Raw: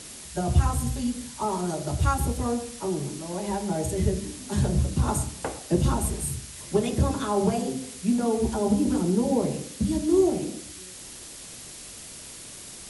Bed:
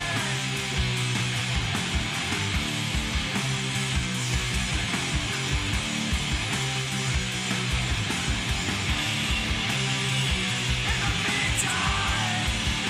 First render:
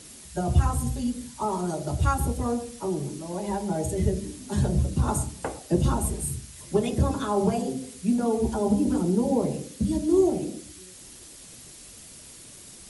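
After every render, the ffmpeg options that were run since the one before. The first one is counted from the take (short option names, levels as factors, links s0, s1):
-af "afftdn=nr=6:nf=-42"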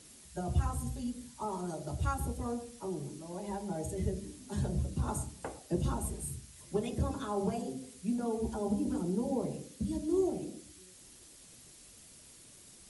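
-af "volume=0.335"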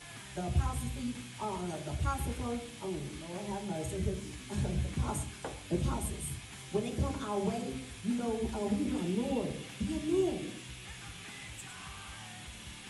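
-filter_complex "[1:a]volume=0.0841[s0];[0:a][s0]amix=inputs=2:normalize=0"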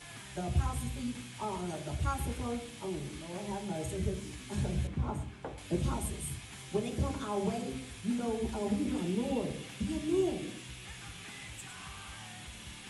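-filter_complex "[0:a]asettb=1/sr,asplit=3[s0][s1][s2];[s0]atrim=end=4.874[s3];[s1]atrim=start=4.87:end=5.58,asetpts=PTS-STARTPTS,afade=t=in:d=0.004:c=qsin,afade=t=out:st=0.706:d=0.004:c=qsin,lowpass=f=1300:p=1[s4];[s2]atrim=start=5.576[s5];[s3][s4]acrossfade=d=0.004:c1=hsin:c2=qsin[s6];[s6][s5]acrossfade=d=0.004:c1=qsin:c2=hsin"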